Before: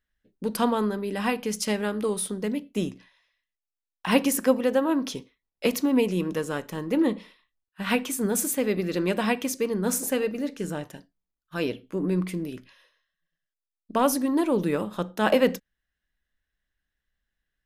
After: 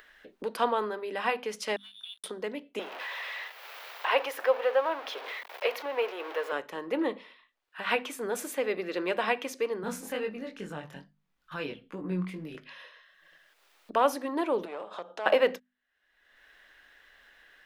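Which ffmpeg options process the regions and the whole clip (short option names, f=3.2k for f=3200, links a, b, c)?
-filter_complex "[0:a]asettb=1/sr,asplit=3[a][b][c];[a]atrim=end=1.764[d];[b]atrim=start=1.76:end=2.24,asetpts=PTS-STARTPTS,afade=t=in:d=0.004:c=qsin,afade=t=out:st=0.476:d=0.004:c=qsin,asplit=3[e][f][g];[e]bandpass=f=300:t=q:w=8,volume=0dB[h];[f]bandpass=f=870:t=q:w=8,volume=-6dB[i];[g]bandpass=f=2.24k:t=q:w=8,volume=-9dB[j];[h][i][j]amix=inputs=3:normalize=0,lowpass=f=3.2k:t=q:w=0.5098,lowpass=f=3.2k:t=q:w=0.6013,lowpass=f=3.2k:t=q:w=0.9,lowpass=f=3.2k:t=q:w=2.563,afreqshift=-3800,aeval=exprs='sgn(val(0))*max(abs(val(0))-0.00473,0)':c=same[k];[c]atrim=start=2.236[l];[d][k]acrossfade=d=0.004:c1=hsin:c2=qsin[m];[m][l]acrossfade=d=0.004:c1=qsin:c2=hsin,asettb=1/sr,asplit=3[n][o][p];[n]atrim=end=2.794[q];[o]atrim=start=2.79:end=6.52,asetpts=PTS-STARTPTS,afade=t=in:d=0.004:c=qsin,afade=t=out:st=3.726:d=0.004:c=qsin,aeval=exprs='val(0)+0.5*0.0335*sgn(val(0))':c=same,highpass=f=460:w=0.5412,highpass=f=460:w=1.3066,equalizer=f=8k:t=o:w=1.2:g=-12.5[r];[p]atrim=start=6.516[s];[q][r]acrossfade=d=0.004:c1=hsin:c2=qsin[t];[t][s]acrossfade=d=0.004:c1=qsin:c2=hsin,asettb=1/sr,asplit=3[u][v][w];[u]atrim=end=9.834[x];[v]atrim=start=9.83:end=12.55,asetpts=PTS-STARTPTS,afade=t=in:d=0.004:c=qsin,afade=t=out:st=2.716:d=0.004:c=qsin,lowshelf=f=250:t=q:w=1.5:g=12.5,bandreject=f=630:w=11,flanger=delay=19.5:depth=3.1:speed=2.3[y];[w]atrim=start=12.546[z];[x][y]acrossfade=d=0.004:c1=hsin:c2=qsin[aa];[aa][z]acrossfade=d=0.004:c1=qsin:c2=hsin,asettb=1/sr,asplit=3[ab][ac][ad];[ab]atrim=end=14.654[ae];[ac]atrim=start=14.65:end=15.26,asetpts=PTS-STARTPTS,afade=t=in:d=0.004:c=qsin,afade=t=out:st=0.606:d=0.004:c=qsin,aeval=exprs='clip(val(0),-1,0.0376)':c=same,acompressor=threshold=-35dB:ratio=2:attack=3.2:release=140:knee=1:detection=peak,highpass=160,equalizer=f=220:t=q:w=4:g=-9,equalizer=f=350:t=q:w=4:g=-4,equalizer=f=670:t=q:w=4:g=5,equalizer=f=1.9k:t=q:w=4:g=-5,lowpass=f=8.7k:w=0.5412,lowpass=f=8.7k:w=1.3066[af];[ad]atrim=start=15.256[ag];[ae][af]acrossfade=d=0.004:c1=hsin:c2=qsin[ah];[ah][ag]acrossfade=d=0.004:c1=qsin:c2=hsin,acrossover=split=370 3900:gain=0.0708 1 0.2[ai][aj][ak];[ai][aj][ak]amix=inputs=3:normalize=0,bandreject=f=50:t=h:w=6,bandreject=f=100:t=h:w=6,bandreject=f=150:t=h:w=6,bandreject=f=200:t=h:w=6,bandreject=f=250:t=h:w=6,acompressor=mode=upward:threshold=-34dB:ratio=2.5"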